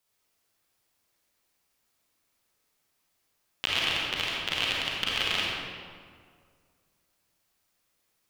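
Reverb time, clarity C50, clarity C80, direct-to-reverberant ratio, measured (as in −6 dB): 2.0 s, −3.0 dB, −0.5 dB, −5.0 dB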